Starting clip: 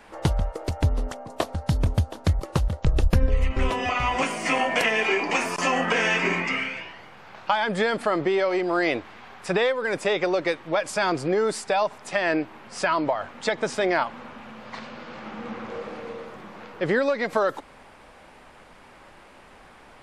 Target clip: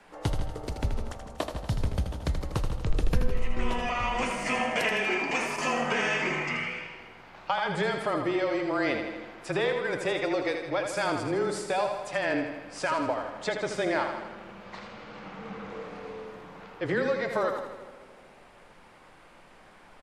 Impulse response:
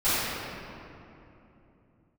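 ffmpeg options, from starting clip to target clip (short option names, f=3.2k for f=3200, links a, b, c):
-filter_complex "[0:a]afreqshift=-22,aecho=1:1:80|160|240|320|400|480|560:0.447|0.259|0.15|0.0872|0.0505|0.0293|0.017,asplit=2[a][b];[1:a]atrim=start_sample=2205,asetrate=74970,aresample=44100[c];[b][c]afir=irnorm=-1:irlink=0,volume=-25.5dB[d];[a][d]amix=inputs=2:normalize=0,volume=-6dB"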